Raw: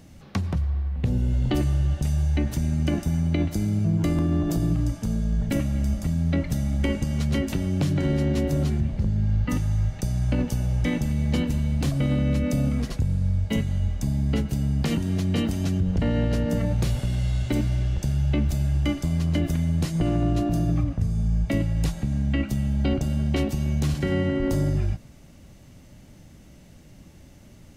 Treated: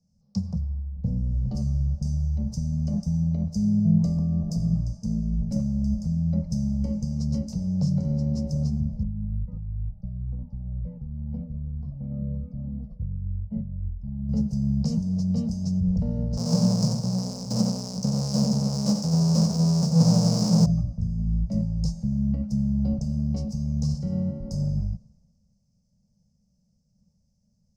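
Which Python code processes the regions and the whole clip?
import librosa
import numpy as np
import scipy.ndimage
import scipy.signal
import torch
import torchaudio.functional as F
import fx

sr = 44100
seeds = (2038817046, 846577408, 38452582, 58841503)

y = fx.chain(x, sr, fx.air_absorb(metres=400.0),
    fx.comb_cascade(direction='falling', hz=1.4), at=(9.03, 14.29))
y = fx.chain(y, sr, fx.halfwave_hold(),
    fx.highpass(hz=120.0, slope=24),
    fx.echo_single(ms=92, db=-5.5), at=(16.37, 20.66))
y = fx.curve_eq(y, sr, hz=(110.0, 210.0, 320.0, 480.0, 1000.0, 1800.0, 3500.0, 5100.0, 12000.0), db=(0, 9, -26, -2, -11, -28, -23, 7, -18))
y = fx.band_widen(y, sr, depth_pct=70)
y = y * librosa.db_to_amplitude(-4.0)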